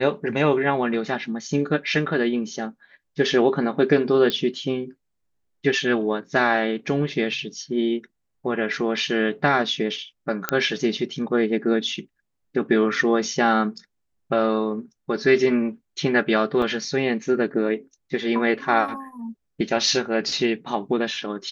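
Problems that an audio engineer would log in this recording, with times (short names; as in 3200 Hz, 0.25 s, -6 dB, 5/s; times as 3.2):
4.3 pop -10 dBFS
10.49 pop -5 dBFS
16.62 gap 3.5 ms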